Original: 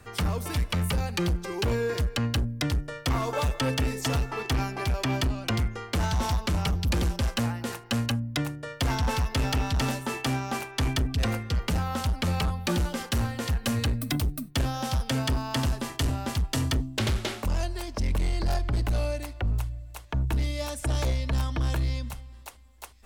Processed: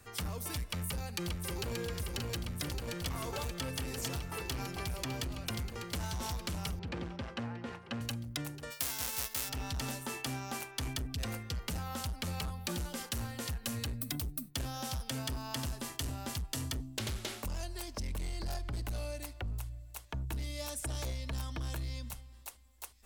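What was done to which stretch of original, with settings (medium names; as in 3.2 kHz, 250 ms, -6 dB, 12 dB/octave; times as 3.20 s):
0.67–1.77 s: echo throw 580 ms, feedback 85%, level -3 dB
6.79–8.01 s: band-pass 110–2300 Hz
8.70–9.48 s: formants flattened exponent 0.3
whole clip: treble shelf 4 kHz +8 dB; compression, threshold -26 dBFS; treble shelf 11 kHz +4 dB; trim -8.5 dB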